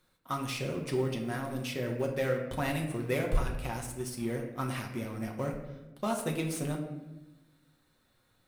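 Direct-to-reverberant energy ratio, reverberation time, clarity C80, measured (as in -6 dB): 1.0 dB, 1.0 s, 8.5 dB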